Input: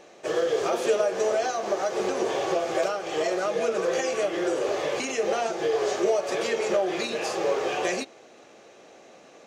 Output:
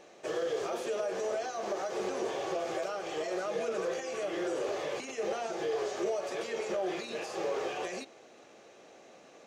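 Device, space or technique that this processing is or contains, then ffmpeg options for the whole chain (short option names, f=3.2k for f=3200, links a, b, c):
de-esser from a sidechain: -filter_complex "[0:a]asplit=2[a][b];[b]highpass=f=6k:p=1,apad=whole_len=417494[c];[a][c]sidechaincompress=threshold=-42dB:ratio=8:attack=4:release=53,volume=-4.5dB"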